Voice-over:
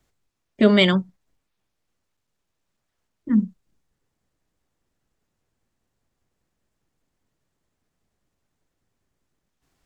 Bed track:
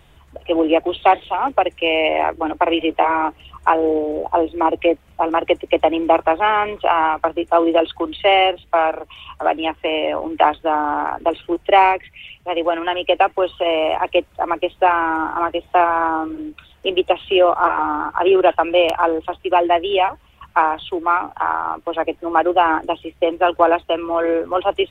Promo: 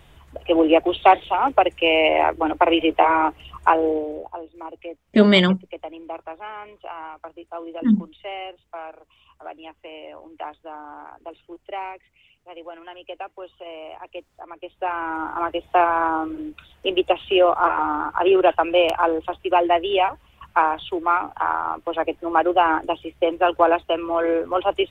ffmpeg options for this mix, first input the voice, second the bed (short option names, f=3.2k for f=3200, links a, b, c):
-filter_complex "[0:a]adelay=4550,volume=1.5dB[a];[1:a]volume=16.5dB,afade=t=out:st=3.58:d=0.81:silence=0.112202,afade=t=in:st=14.55:d=1.18:silence=0.149624[b];[a][b]amix=inputs=2:normalize=0"